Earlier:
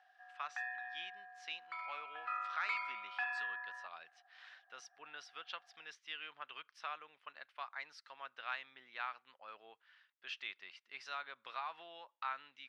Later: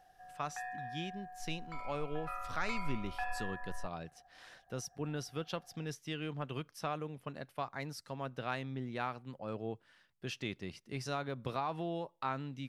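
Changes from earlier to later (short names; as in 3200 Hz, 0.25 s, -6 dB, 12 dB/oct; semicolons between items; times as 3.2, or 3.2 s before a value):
background -4.5 dB; master: remove Butterworth band-pass 2100 Hz, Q 0.77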